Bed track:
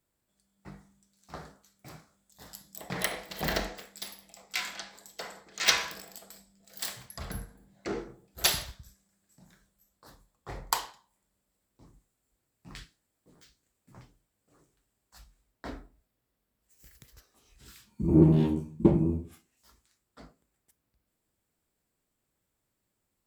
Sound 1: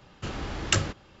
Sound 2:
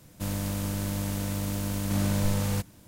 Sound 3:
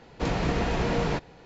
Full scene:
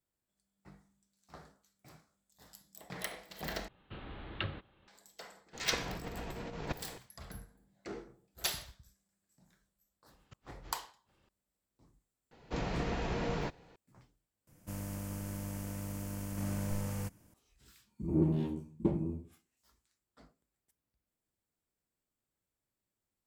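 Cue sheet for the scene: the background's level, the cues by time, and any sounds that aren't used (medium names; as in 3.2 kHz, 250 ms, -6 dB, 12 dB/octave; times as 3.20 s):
bed track -9.5 dB
3.68 s: replace with 1 -12.5 dB + steep low-pass 4 kHz 72 dB/octave
5.53 s: add 3 -6.5 dB + compressor with a negative ratio -32 dBFS, ratio -0.5
10.09 s: add 1 -17.5 dB + inverted gate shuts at -24 dBFS, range -41 dB
12.31 s: add 3 -9 dB
14.47 s: replace with 2 -10 dB + peaking EQ 3.8 kHz -11 dB 0.48 oct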